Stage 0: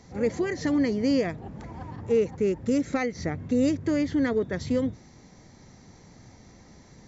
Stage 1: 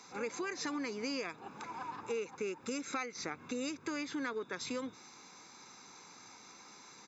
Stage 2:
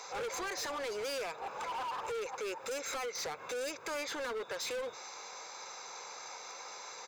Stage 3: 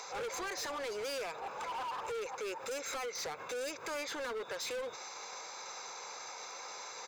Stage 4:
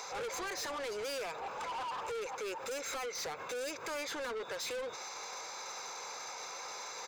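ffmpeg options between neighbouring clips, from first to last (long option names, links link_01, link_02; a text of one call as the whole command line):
ffmpeg -i in.wav -af "highpass=640,aecho=1:1:0.8:0.7,acompressor=threshold=-40dB:ratio=3,volume=3dB" out.wav
ffmpeg -i in.wav -filter_complex "[0:a]lowshelf=frequency=370:width_type=q:width=3:gain=-12.5,asplit=2[link_01][link_02];[link_02]alimiter=level_in=9dB:limit=-24dB:level=0:latency=1:release=93,volume=-9dB,volume=1.5dB[link_03];[link_01][link_03]amix=inputs=2:normalize=0,asoftclip=type=hard:threshold=-36.5dB,volume=1dB" out.wav
ffmpeg -i in.wav -af "alimiter=level_in=20.5dB:limit=-24dB:level=0:latency=1:release=133,volume=-20.5dB,volume=8dB" out.wav
ffmpeg -i in.wav -af "asoftclip=type=tanh:threshold=-38.5dB,volume=3dB" out.wav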